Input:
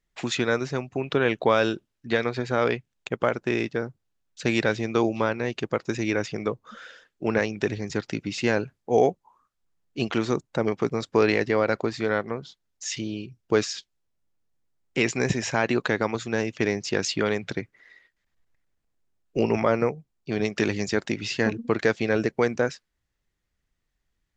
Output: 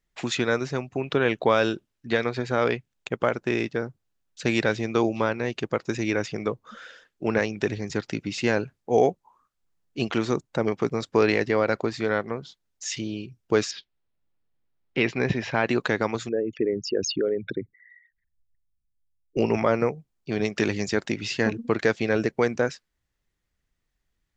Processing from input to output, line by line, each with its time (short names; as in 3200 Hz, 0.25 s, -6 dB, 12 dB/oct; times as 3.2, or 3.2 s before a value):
13.71–15.67 LPF 4200 Hz 24 dB/oct
16.29–19.37 formant sharpening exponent 3